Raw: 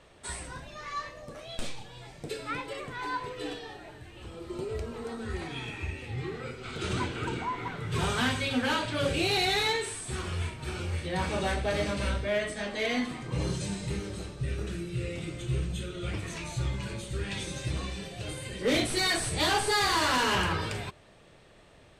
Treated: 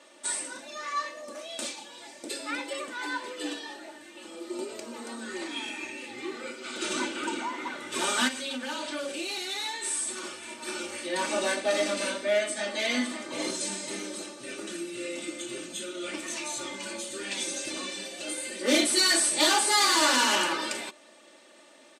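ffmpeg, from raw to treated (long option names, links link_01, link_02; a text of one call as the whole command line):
ffmpeg -i in.wav -filter_complex "[0:a]asplit=3[link_01][link_02][link_03];[link_01]afade=type=out:start_time=8.27:duration=0.02[link_04];[link_02]acompressor=threshold=-33dB:ratio=12:attack=3.2:release=140:knee=1:detection=peak,afade=type=in:start_time=8.27:duration=0.02,afade=type=out:start_time=10.65:duration=0.02[link_05];[link_03]afade=type=in:start_time=10.65:duration=0.02[link_06];[link_04][link_05][link_06]amix=inputs=3:normalize=0,asplit=2[link_07][link_08];[link_08]afade=type=in:start_time=12.39:duration=0.01,afade=type=out:start_time=12.95:duration=0.01,aecho=0:1:550|1100|1650|2200:0.266073|0.106429|0.0425716|0.0170286[link_09];[link_07][link_09]amix=inputs=2:normalize=0,highpass=frequency=240:width=0.5412,highpass=frequency=240:width=1.3066,equalizer=frequency=7500:width_type=o:width=1.4:gain=8.5,aecho=1:1:3.4:0.78" out.wav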